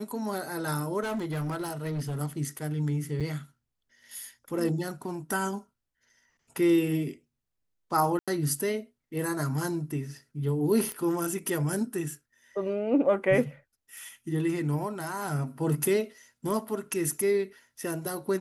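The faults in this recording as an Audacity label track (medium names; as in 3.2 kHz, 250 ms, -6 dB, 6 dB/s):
1.020000	2.210000	clipped -28 dBFS
3.200000	3.210000	dropout 6.9 ms
8.190000	8.280000	dropout 86 ms
10.920000	10.920000	pop -19 dBFS
13.980000	13.980000	pop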